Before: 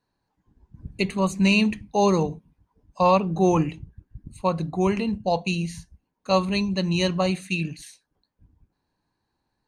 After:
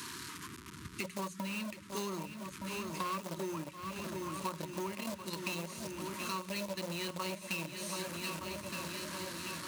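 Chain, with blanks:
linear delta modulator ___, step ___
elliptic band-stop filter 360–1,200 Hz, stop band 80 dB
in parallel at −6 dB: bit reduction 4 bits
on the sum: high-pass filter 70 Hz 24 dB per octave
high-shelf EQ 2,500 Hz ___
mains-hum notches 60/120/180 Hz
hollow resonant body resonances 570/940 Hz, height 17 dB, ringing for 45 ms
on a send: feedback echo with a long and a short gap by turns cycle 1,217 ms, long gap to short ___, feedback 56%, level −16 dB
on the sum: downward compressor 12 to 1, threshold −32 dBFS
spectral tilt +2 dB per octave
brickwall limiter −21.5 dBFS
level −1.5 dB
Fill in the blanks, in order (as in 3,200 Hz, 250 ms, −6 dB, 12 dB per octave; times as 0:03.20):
64 kbit/s, −35 dBFS, −4.5 dB, 1.5 to 1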